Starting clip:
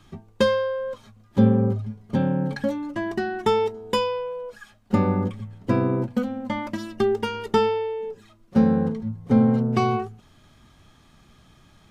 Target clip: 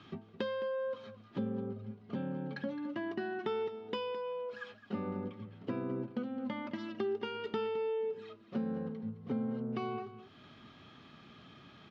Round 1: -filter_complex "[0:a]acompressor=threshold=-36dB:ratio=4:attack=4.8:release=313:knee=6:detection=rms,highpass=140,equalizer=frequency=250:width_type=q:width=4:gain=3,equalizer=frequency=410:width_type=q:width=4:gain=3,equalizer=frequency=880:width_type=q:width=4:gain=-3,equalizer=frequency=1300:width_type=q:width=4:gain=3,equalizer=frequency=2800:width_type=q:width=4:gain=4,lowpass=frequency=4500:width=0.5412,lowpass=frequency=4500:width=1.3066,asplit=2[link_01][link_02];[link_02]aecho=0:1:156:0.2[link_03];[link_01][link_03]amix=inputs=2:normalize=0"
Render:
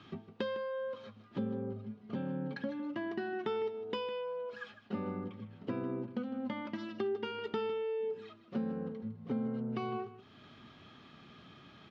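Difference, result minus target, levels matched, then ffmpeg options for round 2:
echo 58 ms early
-filter_complex "[0:a]acompressor=threshold=-36dB:ratio=4:attack=4.8:release=313:knee=6:detection=rms,highpass=140,equalizer=frequency=250:width_type=q:width=4:gain=3,equalizer=frequency=410:width_type=q:width=4:gain=3,equalizer=frequency=880:width_type=q:width=4:gain=-3,equalizer=frequency=1300:width_type=q:width=4:gain=3,equalizer=frequency=2800:width_type=q:width=4:gain=4,lowpass=frequency=4500:width=0.5412,lowpass=frequency=4500:width=1.3066,asplit=2[link_01][link_02];[link_02]aecho=0:1:214:0.2[link_03];[link_01][link_03]amix=inputs=2:normalize=0"

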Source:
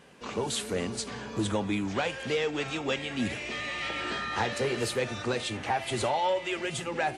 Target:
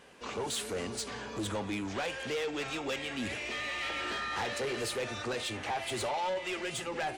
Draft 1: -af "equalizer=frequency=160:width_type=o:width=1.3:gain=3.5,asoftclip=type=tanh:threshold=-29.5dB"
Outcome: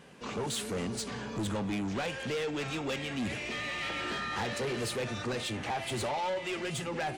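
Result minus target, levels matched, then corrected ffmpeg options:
125 Hz band +5.5 dB
-af "equalizer=frequency=160:width_type=o:width=1.3:gain=-7.5,asoftclip=type=tanh:threshold=-29.5dB"

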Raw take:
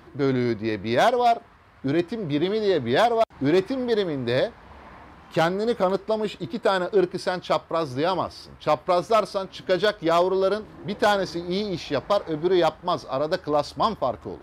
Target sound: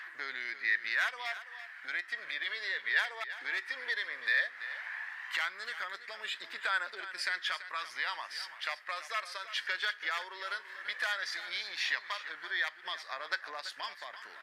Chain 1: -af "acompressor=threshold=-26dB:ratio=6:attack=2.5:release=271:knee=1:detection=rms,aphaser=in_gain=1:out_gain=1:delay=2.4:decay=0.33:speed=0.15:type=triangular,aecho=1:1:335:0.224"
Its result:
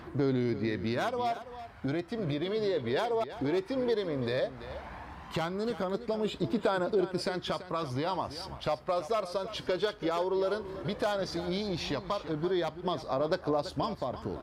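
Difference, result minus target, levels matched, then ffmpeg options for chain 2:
2,000 Hz band −13.5 dB
-af "acompressor=threshold=-26dB:ratio=6:attack=2.5:release=271:knee=1:detection=rms,highpass=frequency=1800:width_type=q:width=6.1,aphaser=in_gain=1:out_gain=1:delay=2.4:decay=0.33:speed=0.15:type=triangular,aecho=1:1:335:0.224"

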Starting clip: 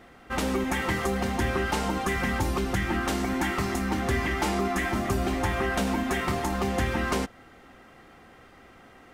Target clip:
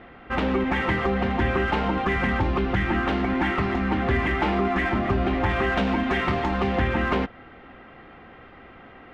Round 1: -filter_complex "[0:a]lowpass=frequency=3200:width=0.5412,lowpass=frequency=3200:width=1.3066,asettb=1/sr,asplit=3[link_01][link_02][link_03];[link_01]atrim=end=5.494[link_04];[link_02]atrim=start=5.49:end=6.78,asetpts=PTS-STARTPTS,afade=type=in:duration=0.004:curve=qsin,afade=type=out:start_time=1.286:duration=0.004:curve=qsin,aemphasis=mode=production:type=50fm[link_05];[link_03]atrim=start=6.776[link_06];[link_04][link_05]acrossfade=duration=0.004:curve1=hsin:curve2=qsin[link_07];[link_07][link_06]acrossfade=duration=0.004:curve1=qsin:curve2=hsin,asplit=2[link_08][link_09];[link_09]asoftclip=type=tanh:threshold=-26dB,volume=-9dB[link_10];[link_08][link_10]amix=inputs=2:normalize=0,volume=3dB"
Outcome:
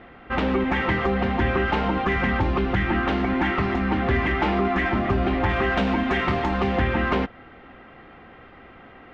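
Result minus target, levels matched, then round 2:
soft clipping: distortion −6 dB
-filter_complex "[0:a]lowpass=frequency=3200:width=0.5412,lowpass=frequency=3200:width=1.3066,asettb=1/sr,asplit=3[link_01][link_02][link_03];[link_01]atrim=end=5.494[link_04];[link_02]atrim=start=5.49:end=6.78,asetpts=PTS-STARTPTS,afade=type=in:duration=0.004:curve=qsin,afade=type=out:start_time=1.286:duration=0.004:curve=qsin,aemphasis=mode=production:type=50fm[link_05];[link_03]atrim=start=6.776[link_06];[link_04][link_05]acrossfade=duration=0.004:curve1=hsin:curve2=qsin[link_07];[link_07][link_06]acrossfade=duration=0.004:curve1=qsin:curve2=hsin,asplit=2[link_08][link_09];[link_09]asoftclip=type=tanh:threshold=-36dB,volume=-9dB[link_10];[link_08][link_10]amix=inputs=2:normalize=0,volume=3dB"

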